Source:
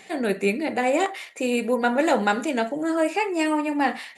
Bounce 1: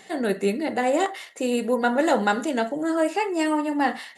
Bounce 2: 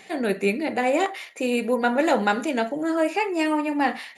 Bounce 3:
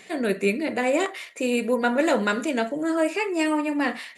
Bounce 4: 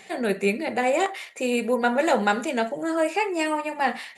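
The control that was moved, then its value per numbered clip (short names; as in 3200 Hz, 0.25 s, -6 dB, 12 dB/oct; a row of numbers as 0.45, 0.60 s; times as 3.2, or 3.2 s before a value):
notch, frequency: 2400, 8000, 810, 290 Hz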